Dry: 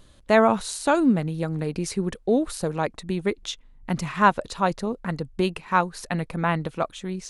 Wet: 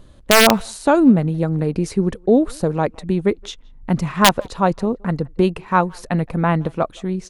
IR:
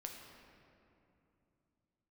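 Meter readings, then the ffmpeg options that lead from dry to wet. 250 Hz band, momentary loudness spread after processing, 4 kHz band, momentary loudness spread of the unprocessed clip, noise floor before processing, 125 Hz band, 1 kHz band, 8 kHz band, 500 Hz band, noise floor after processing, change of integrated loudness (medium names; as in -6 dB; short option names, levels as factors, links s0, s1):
+7.0 dB, 10 LU, +12.0 dB, 10 LU, -53 dBFS, +8.0 dB, +4.0 dB, +9.0 dB, +5.5 dB, -45 dBFS, +6.5 dB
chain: -filter_complex "[0:a]tiltshelf=f=1300:g=5,aeval=exprs='(mod(1.78*val(0)+1,2)-1)/1.78':c=same,asplit=2[s0][s1];[s1]adelay=170,highpass=300,lowpass=3400,asoftclip=type=hard:threshold=0.188,volume=0.0501[s2];[s0][s2]amix=inputs=2:normalize=0,volume=1.41"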